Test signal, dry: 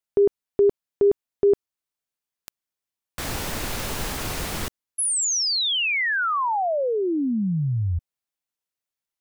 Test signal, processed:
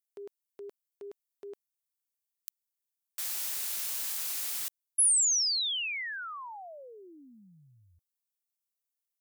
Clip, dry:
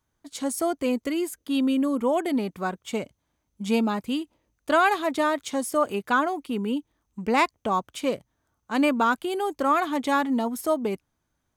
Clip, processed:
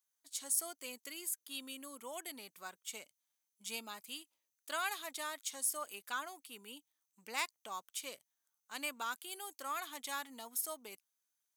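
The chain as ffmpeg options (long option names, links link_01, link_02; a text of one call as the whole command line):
ffmpeg -i in.wav -af "aderivative,volume=-2dB" out.wav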